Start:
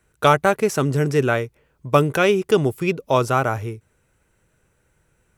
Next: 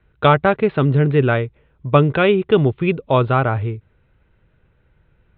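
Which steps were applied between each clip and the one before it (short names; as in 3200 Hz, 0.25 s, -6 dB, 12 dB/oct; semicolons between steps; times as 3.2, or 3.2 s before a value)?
steep low-pass 3900 Hz 96 dB/oct; low shelf 160 Hz +9 dB; gain +1 dB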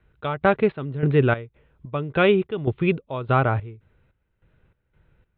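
step gate "xx..xxx...x" 146 bpm -12 dB; gain -2.5 dB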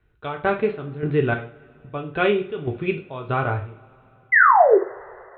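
painted sound fall, 4.32–4.78, 360–2100 Hz -11 dBFS; two-slope reverb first 0.37 s, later 3.6 s, from -28 dB, DRR 2 dB; gain -4 dB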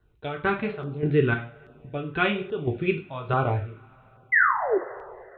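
LFO notch saw down 1.2 Hz 240–2400 Hz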